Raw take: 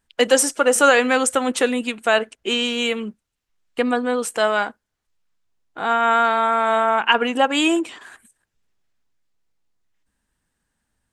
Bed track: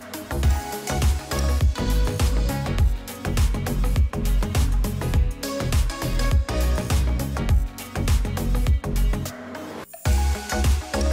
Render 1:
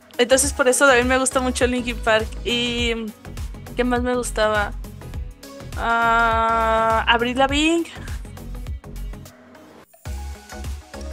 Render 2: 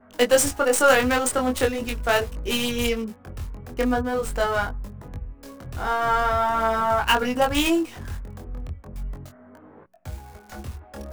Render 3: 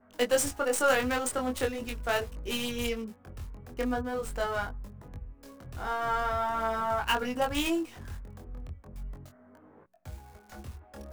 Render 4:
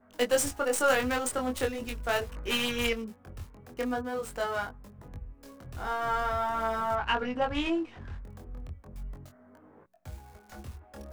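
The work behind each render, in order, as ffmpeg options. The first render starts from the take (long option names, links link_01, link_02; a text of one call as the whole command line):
ffmpeg -i in.wav -i bed.wav -filter_complex "[1:a]volume=-10.5dB[link_01];[0:a][link_01]amix=inputs=2:normalize=0" out.wav
ffmpeg -i in.wav -filter_complex "[0:a]acrossover=split=1800[link_01][link_02];[link_02]acrusher=bits=4:dc=4:mix=0:aa=0.000001[link_03];[link_01][link_03]amix=inputs=2:normalize=0,flanger=delay=20:depth=4.2:speed=0.41" out.wav
ffmpeg -i in.wav -af "volume=-8dB" out.wav
ffmpeg -i in.wav -filter_complex "[0:a]asettb=1/sr,asplit=3[link_01][link_02][link_03];[link_01]atrim=end=2.294[link_04];[link_02]atrim=start=2.29:end=2.93,asetpts=PTS-STARTPTS,afade=type=in:duration=0.004:curve=qsin,afade=type=out:start_time=0.636:duration=0.004:curve=qsin,equalizer=frequency=1500:width=0.72:gain=10.5[link_05];[link_03]atrim=start=2.926[link_06];[link_04][link_05]acrossfade=duration=0.004:curve1=hsin:curve2=qsin[link_07];[link_07][link_06]acrossfade=duration=0.004:curve1=qsin:curve2=hsin,asettb=1/sr,asplit=3[link_08][link_09][link_10];[link_08]atrim=end=3.434[link_11];[link_09]atrim=start=3.43:end=4.99,asetpts=PTS-STARTPTS,afade=type=in:duration=0.004:curve=qsin,afade=type=out:start_time=1.556:duration=0.004:curve=qsin,highpass=frequency=150:poles=1[link_12];[link_10]atrim=start=4.986[link_13];[link_11][link_12]acrossfade=duration=0.004:curve1=hsin:curve2=qsin[link_14];[link_14][link_13]acrossfade=duration=0.004:curve1=qsin:curve2=hsin,asettb=1/sr,asplit=3[link_15][link_16][link_17];[link_15]atrim=end=6.954[link_18];[link_16]atrim=start=6.95:end=8.24,asetpts=PTS-STARTPTS,afade=type=in:duration=0.004:curve=qsin,afade=type=out:start_time=1.286:duration=0.004:curve=qsin,lowpass=3200[link_19];[link_17]atrim=start=8.236[link_20];[link_18][link_19]acrossfade=duration=0.004:curve1=hsin:curve2=qsin[link_21];[link_21][link_20]acrossfade=duration=0.004:curve1=qsin:curve2=hsin" out.wav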